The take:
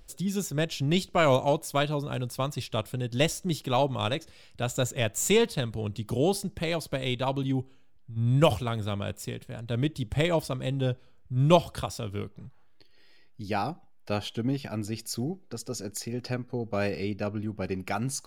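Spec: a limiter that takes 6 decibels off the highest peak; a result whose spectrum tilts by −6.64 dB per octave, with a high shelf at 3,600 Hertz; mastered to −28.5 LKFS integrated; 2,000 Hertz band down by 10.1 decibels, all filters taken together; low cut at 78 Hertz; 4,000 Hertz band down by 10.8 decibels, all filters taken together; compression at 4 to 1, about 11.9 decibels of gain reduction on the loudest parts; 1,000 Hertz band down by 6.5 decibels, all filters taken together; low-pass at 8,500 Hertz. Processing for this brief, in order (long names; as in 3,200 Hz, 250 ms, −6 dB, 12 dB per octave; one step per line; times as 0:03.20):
high-pass filter 78 Hz
low-pass filter 8,500 Hz
parametric band 1,000 Hz −7 dB
parametric band 2,000 Hz −7 dB
high-shelf EQ 3,600 Hz −7.5 dB
parametric band 4,000 Hz −6 dB
downward compressor 4 to 1, threshold −32 dBFS
level +10.5 dB
brickwall limiter −17 dBFS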